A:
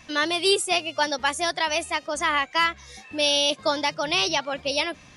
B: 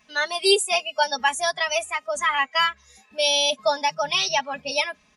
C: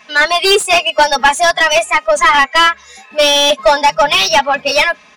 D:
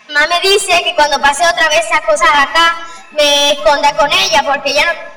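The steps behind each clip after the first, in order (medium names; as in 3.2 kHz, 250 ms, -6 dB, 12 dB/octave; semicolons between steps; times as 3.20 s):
spectral noise reduction 12 dB; high-pass 200 Hz 6 dB/octave; comb 4.7 ms, depth 80%
overdrive pedal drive 21 dB, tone 2.4 kHz, clips at -5.5 dBFS; trim +6 dB
in parallel at -8 dB: overload inside the chain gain 7 dB; on the sum: reverberation RT60 1.0 s, pre-delay 60 ms, DRR 14.5 dB; trim -2 dB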